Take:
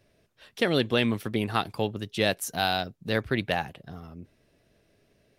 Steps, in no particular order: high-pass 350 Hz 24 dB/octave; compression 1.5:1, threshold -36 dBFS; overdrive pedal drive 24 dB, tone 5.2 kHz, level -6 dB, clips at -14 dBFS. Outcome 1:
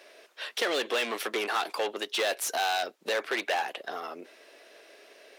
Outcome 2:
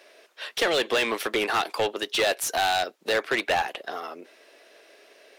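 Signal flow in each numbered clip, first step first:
overdrive pedal > high-pass > compression; high-pass > compression > overdrive pedal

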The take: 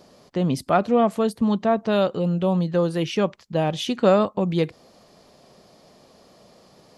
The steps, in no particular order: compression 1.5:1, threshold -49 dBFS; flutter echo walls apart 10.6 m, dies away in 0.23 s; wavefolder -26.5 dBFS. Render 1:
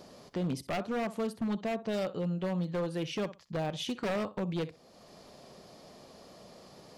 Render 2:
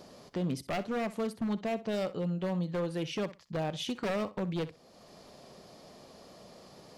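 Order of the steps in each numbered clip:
compression > flutter echo > wavefolder; compression > wavefolder > flutter echo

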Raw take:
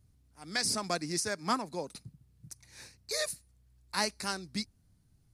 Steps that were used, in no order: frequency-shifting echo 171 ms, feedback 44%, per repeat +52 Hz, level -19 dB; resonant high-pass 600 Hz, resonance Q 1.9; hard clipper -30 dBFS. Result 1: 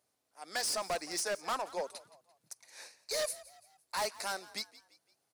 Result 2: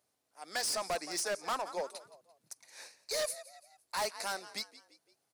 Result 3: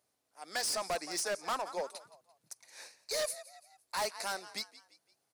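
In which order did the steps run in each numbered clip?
resonant high-pass > hard clipper > frequency-shifting echo; frequency-shifting echo > resonant high-pass > hard clipper; resonant high-pass > frequency-shifting echo > hard clipper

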